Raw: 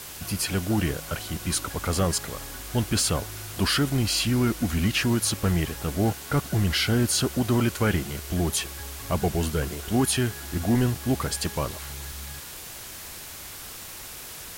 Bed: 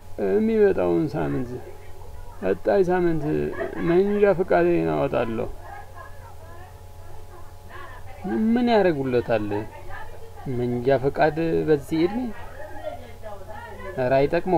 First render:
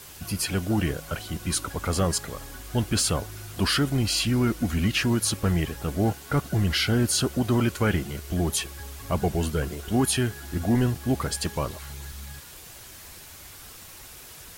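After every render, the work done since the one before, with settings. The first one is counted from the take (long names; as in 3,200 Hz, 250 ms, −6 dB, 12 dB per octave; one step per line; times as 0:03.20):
broadband denoise 6 dB, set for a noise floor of −40 dBFS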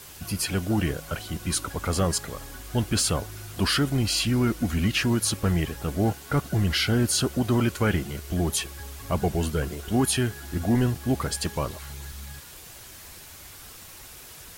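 no processing that can be heard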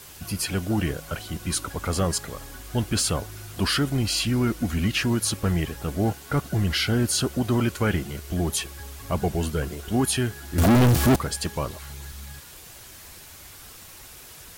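0:10.58–0:11.16: leveller curve on the samples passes 5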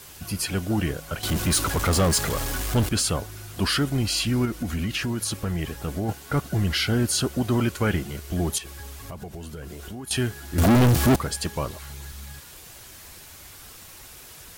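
0:01.23–0:02.89: power curve on the samples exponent 0.5
0:04.45–0:06.09: downward compressor, threshold −23 dBFS
0:08.58–0:10.11: downward compressor 12 to 1, threshold −33 dBFS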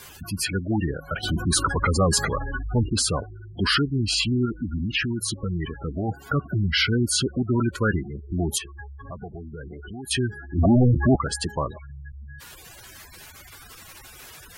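gate on every frequency bin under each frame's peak −15 dB strong
parametric band 1,700 Hz +6 dB 2.4 octaves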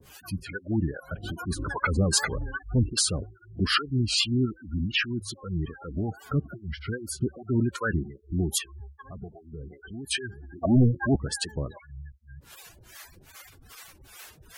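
pitch vibrato 5.5 Hz 77 cents
two-band tremolo in antiphase 2.5 Hz, depth 100%, crossover 490 Hz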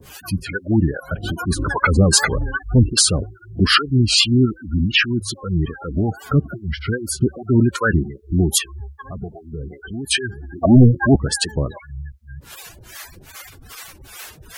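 level +10 dB
brickwall limiter −3 dBFS, peak gain reduction 2 dB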